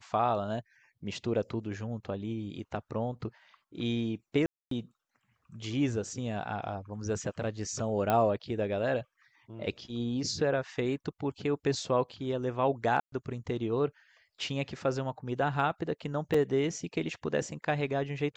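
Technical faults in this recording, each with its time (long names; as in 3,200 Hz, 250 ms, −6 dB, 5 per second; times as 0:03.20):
0:04.46–0:04.71: drop-out 253 ms
0:08.10: click −15 dBFS
0:13.00–0:13.12: drop-out 123 ms
0:16.34: drop-out 4.1 ms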